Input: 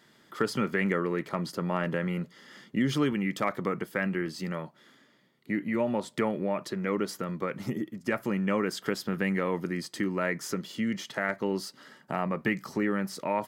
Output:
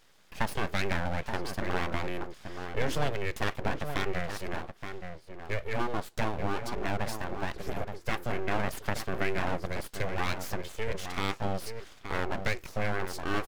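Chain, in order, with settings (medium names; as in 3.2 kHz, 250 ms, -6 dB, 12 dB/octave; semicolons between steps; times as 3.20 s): echo from a far wall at 150 m, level -7 dB; full-wave rectifier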